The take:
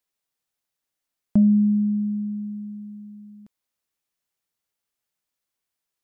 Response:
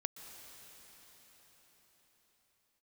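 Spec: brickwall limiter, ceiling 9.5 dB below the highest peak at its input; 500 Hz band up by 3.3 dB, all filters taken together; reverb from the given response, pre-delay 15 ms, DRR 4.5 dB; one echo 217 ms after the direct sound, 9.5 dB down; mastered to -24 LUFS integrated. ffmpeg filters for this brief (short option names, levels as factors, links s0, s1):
-filter_complex "[0:a]equalizer=f=500:t=o:g=4.5,alimiter=limit=0.112:level=0:latency=1,aecho=1:1:217:0.335,asplit=2[s0][s1];[1:a]atrim=start_sample=2205,adelay=15[s2];[s1][s2]afir=irnorm=-1:irlink=0,volume=0.668[s3];[s0][s3]amix=inputs=2:normalize=0,volume=0.841"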